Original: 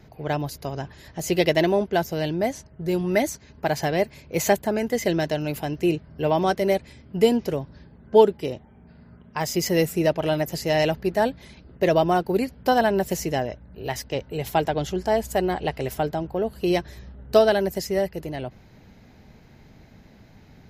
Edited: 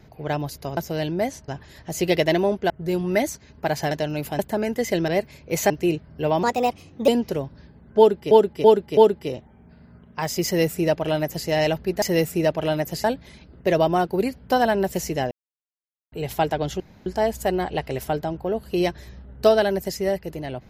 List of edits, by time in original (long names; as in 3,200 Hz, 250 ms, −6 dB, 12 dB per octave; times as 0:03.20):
0:01.99–0:02.70: move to 0:00.77
0:03.91–0:04.53: swap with 0:05.22–0:05.70
0:06.43–0:07.25: play speed 126%
0:08.15–0:08.48: repeat, 4 plays
0:09.63–0:10.65: duplicate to 0:11.20
0:13.47–0:14.28: silence
0:14.96: splice in room tone 0.26 s